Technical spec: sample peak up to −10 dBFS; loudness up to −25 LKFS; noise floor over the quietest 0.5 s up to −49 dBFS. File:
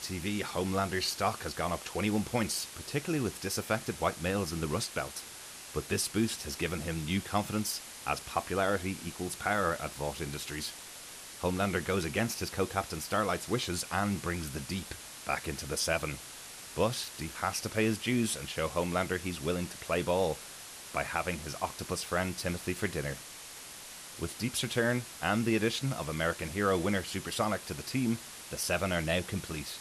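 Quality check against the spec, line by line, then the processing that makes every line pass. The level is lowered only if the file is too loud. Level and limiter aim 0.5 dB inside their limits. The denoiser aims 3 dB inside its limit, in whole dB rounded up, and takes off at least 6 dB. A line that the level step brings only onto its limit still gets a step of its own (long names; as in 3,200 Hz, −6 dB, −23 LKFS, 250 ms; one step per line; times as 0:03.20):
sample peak −15.0 dBFS: in spec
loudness −33.0 LKFS: in spec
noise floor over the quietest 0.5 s −47 dBFS: out of spec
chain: broadband denoise 6 dB, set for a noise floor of −47 dBFS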